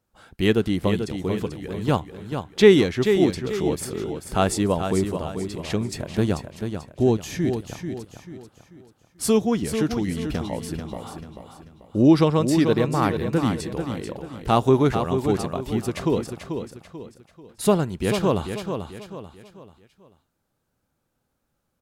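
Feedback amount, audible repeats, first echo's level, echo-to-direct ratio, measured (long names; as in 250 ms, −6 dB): 38%, 4, −7.5 dB, −7.0 dB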